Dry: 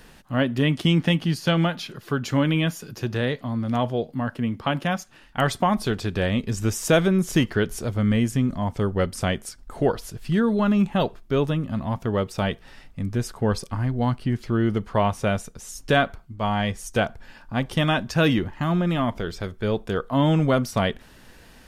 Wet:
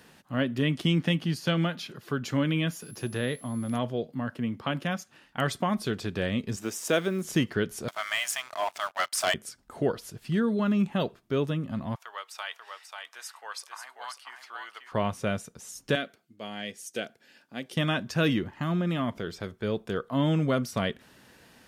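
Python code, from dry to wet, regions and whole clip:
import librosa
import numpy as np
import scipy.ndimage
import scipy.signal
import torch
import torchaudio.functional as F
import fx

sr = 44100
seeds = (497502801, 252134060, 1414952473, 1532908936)

y = fx.dmg_tone(x, sr, hz=11000.0, level_db=-44.0, at=(2.71, 3.77), fade=0.02)
y = fx.quant_dither(y, sr, seeds[0], bits=10, dither='none', at=(2.71, 3.77), fade=0.02)
y = fx.chain(y, sr, fx.law_mismatch(coded='A'),
    fx.highpass(hz=250.0, slope=12), at=(6.56, 7.25))
y = fx.chain(y, sr, fx.brickwall_highpass(low_hz=580.0),
    fx.leveller(passes=3), at=(7.88, 9.34))
y = fx.chain(y, sr, fx.highpass(hz=900.0, slope=24),
    fx.echo_single(ms=538, db=-5.5), at=(11.95, 14.92))
y = fx.chain(y, sr, fx.highpass(hz=320.0, slope=12),
    fx.peak_eq(hz=1000.0, db=-15.0, octaves=1.1), at=(15.95, 17.77))
y = fx.dynamic_eq(y, sr, hz=830.0, q=2.3, threshold_db=-39.0, ratio=4.0, max_db=-6)
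y = scipy.signal.sosfilt(scipy.signal.butter(2, 110.0, 'highpass', fs=sr, output='sos'), y)
y = F.gain(torch.from_numpy(y), -4.5).numpy()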